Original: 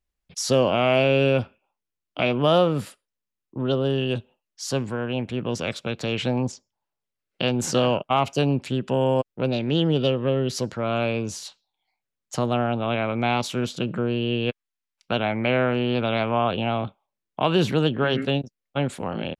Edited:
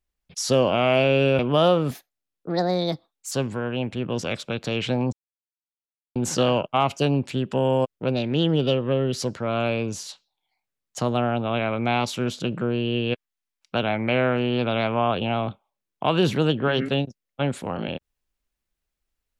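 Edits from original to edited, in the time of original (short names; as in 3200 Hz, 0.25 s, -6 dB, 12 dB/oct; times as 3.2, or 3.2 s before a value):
1.39–2.29 cut
2.81–4.68 speed 133%
6.49–7.52 mute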